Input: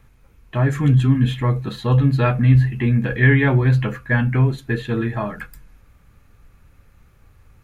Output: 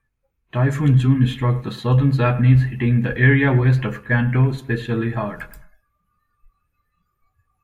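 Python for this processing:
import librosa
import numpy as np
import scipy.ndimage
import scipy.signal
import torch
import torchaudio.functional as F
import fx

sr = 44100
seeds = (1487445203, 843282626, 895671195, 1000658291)

y = fx.echo_bbd(x, sr, ms=105, stages=2048, feedback_pct=41, wet_db=-17.0)
y = fx.noise_reduce_blind(y, sr, reduce_db=22)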